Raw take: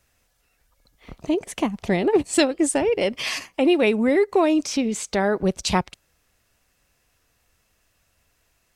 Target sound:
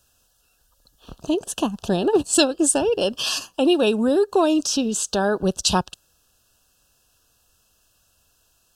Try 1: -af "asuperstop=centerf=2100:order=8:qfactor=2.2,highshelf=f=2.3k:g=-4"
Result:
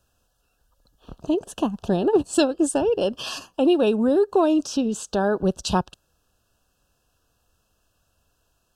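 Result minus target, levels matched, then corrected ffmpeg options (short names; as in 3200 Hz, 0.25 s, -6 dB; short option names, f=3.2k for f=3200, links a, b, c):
4000 Hz band -6.5 dB
-af "asuperstop=centerf=2100:order=8:qfactor=2.2,highshelf=f=2.3k:g=7"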